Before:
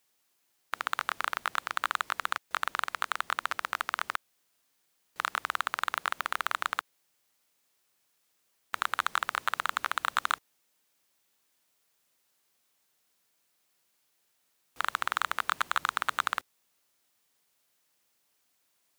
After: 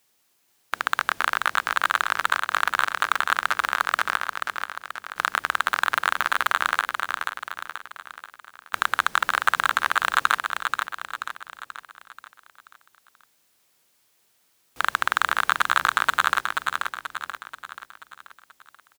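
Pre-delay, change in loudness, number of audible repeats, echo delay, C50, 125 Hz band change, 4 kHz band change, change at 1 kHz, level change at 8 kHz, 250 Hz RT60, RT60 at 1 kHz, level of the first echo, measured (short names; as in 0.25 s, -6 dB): none, +8.0 dB, 5, 0.483 s, none, n/a, +8.0 dB, +8.5 dB, +8.0 dB, none, none, -5.0 dB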